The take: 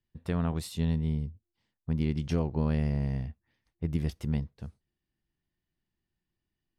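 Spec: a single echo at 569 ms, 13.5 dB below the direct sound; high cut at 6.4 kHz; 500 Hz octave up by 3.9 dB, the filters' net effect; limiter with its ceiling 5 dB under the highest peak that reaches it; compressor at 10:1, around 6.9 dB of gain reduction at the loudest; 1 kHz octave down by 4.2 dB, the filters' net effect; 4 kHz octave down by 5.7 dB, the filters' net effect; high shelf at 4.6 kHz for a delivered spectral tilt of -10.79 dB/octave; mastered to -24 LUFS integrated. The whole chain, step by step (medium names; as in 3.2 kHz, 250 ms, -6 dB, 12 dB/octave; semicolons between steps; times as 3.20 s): low-pass 6.4 kHz; peaking EQ 500 Hz +6.5 dB; peaking EQ 1 kHz -8 dB; peaking EQ 4 kHz -3.5 dB; treble shelf 4.6 kHz -5.5 dB; compression 10:1, threshold -29 dBFS; peak limiter -25.5 dBFS; delay 569 ms -13.5 dB; trim +14.5 dB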